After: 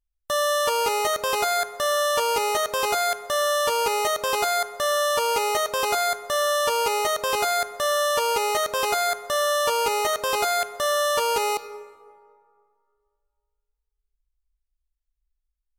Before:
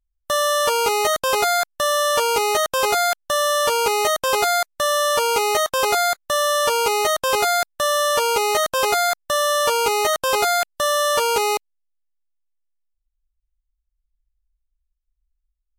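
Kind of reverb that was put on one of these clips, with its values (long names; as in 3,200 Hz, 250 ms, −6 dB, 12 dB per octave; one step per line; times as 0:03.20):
dense smooth reverb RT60 2.2 s, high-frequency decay 0.45×, DRR 13 dB
level −4.5 dB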